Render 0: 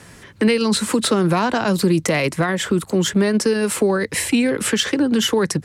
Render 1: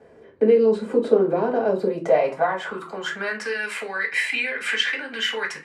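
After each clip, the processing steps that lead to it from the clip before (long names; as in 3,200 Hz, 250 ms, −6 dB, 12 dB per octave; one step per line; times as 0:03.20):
band-pass filter sweep 400 Hz → 2,000 Hz, 0:01.54–0:03.57
convolution reverb RT60 0.35 s, pre-delay 3 ms, DRR −2.5 dB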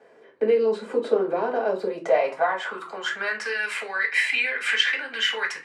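meter weighting curve A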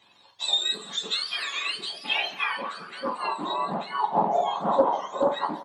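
frequency axis turned over on the octave scale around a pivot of 1,300 Hz
repeating echo 179 ms, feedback 59%, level −21 dB
highs frequency-modulated by the lows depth 0.19 ms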